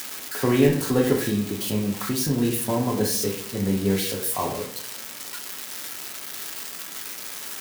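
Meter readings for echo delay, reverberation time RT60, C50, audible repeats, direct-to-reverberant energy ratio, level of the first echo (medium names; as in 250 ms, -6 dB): no echo, 0.50 s, 11.0 dB, no echo, 3.0 dB, no echo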